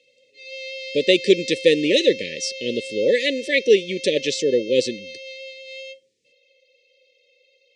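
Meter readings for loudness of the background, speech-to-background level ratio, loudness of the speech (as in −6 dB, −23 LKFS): −33.5 LKFS, 13.5 dB, −20.0 LKFS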